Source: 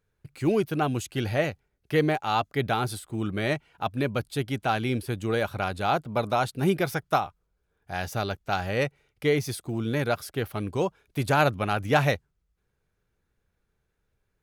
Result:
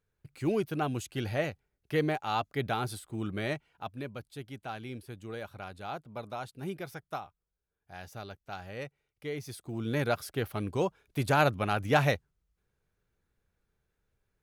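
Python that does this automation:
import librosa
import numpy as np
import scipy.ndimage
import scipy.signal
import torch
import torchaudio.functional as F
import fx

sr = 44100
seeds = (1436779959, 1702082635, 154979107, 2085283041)

y = fx.gain(x, sr, db=fx.line((3.4, -5.5), (4.18, -14.0), (9.29, -14.0), (9.98, -3.0)))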